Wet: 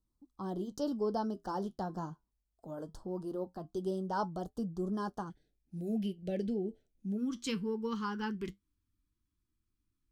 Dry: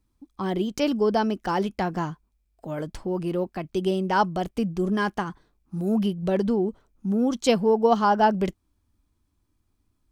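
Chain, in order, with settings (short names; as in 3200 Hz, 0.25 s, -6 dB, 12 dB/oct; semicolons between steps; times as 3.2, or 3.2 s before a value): flange 0.21 Hz, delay 5.2 ms, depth 5.9 ms, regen -69%; Butterworth band-stop 2300 Hz, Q 0.92, from 5.29 s 1100 Hz, from 7.16 s 660 Hz; gain -7 dB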